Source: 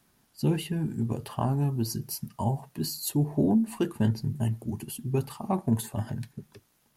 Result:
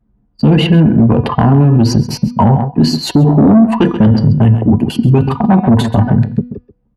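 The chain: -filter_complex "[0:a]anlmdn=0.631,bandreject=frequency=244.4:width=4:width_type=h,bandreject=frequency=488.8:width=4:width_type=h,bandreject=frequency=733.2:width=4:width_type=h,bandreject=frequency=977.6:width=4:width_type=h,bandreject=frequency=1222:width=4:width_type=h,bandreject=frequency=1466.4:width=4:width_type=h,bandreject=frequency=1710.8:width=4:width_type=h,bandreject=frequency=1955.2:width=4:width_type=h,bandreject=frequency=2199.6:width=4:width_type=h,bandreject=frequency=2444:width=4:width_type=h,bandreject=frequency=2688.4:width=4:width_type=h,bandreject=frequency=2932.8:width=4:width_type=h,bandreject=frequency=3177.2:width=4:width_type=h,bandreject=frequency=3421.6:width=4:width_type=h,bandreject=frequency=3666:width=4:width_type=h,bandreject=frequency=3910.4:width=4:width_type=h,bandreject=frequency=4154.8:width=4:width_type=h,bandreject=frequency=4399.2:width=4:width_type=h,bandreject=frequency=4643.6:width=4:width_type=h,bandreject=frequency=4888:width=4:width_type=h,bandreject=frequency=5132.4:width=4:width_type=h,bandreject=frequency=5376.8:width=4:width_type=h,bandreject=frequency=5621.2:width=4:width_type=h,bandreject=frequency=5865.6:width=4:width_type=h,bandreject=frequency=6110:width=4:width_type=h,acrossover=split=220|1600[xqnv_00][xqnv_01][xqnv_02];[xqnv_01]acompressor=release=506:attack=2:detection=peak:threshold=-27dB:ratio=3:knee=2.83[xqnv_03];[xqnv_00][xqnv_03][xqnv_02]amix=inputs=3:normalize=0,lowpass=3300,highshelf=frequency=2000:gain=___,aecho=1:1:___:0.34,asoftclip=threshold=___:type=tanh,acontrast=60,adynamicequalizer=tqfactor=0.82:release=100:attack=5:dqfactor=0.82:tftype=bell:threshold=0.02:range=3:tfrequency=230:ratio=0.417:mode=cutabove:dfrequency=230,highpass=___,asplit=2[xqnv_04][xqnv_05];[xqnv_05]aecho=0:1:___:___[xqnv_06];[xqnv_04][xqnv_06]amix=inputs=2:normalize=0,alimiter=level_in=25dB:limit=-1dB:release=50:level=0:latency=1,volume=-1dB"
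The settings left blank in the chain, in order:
-7.5, 4.1, -23.5dB, 45, 133, 0.178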